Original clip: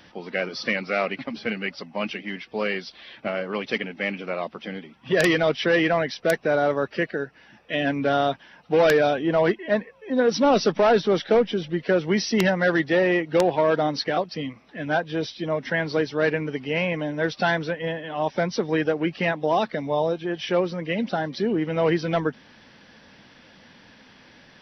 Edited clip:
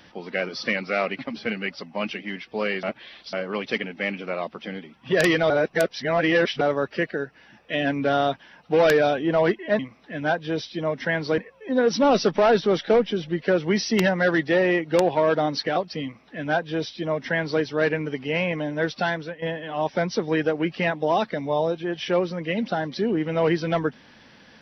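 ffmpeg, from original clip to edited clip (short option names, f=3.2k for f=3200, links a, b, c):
-filter_complex "[0:a]asplit=8[a][b][c][d][e][f][g][h];[a]atrim=end=2.832[i];[b]atrim=start=2.828:end=3.332,asetpts=PTS-STARTPTS,areverse[j];[c]atrim=start=3.328:end=5.502[k];[d]atrim=start=5.498:end=6.612,asetpts=PTS-STARTPTS,areverse[l];[e]atrim=start=6.608:end=9.792[m];[f]atrim=start=14.438:end=16.032[n];[g]atrim=start=9.788:end=17.83,asetpts=PTS-STARTPTS,afade=t=out:st=7.462:d=0.58:silence=0.334965[o];[h]atrim=start=17.83,asetpts=PTS-STARTPTS,afade=t=in:d=0.004:c=hsin:silence=0.334965[p];[i][j]acrossfade=d=0.004:c1=hsin:c2=hsin[q];[q][k]acrossfade=d=0.004:c1=hsin:c2=hsin[r];[r][l]acrossfade=d=0.004:c1=hsin:c2=hsin[s];[s][m]acrossfade=d=0.004:c1=hsin:c2=hsin[t];[t][n]acrossfade=d=0.004:c1=hsin:c2=hsin[u];[o][p]concat=n=2:v=0:a=1[v];[u][v]acrossfade=d=0.004:c1=hsin:c2=hsin"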